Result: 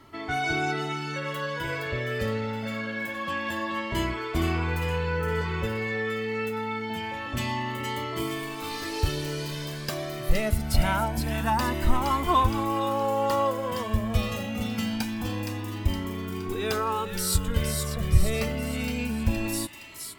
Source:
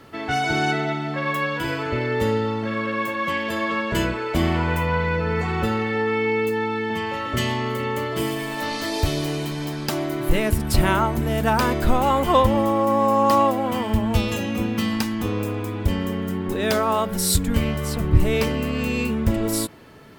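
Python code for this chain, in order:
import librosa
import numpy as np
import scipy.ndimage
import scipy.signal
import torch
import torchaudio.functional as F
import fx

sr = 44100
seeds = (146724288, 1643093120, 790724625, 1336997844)

p1 = x + fx.echo_wet_highpass(x, sr, ms=467, feedback_pct=50, hz=1900.0, wet_db=-4.5, dry=0)
p2 = fx.comb_cascade(p1, sr, direction='rising', hz=0.25)
y = p2 * librosa.db_to_amplitude(-1.5)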